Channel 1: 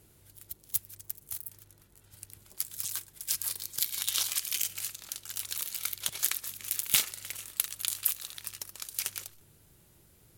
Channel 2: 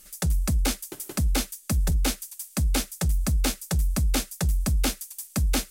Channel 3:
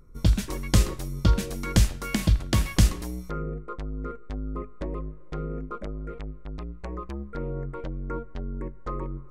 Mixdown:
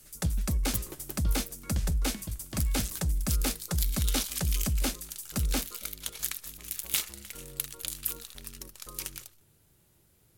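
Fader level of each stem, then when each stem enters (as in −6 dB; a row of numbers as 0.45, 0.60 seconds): −4.0, −5.0, −16.5 decibels; 0.00, 0.00, 0.00 seconds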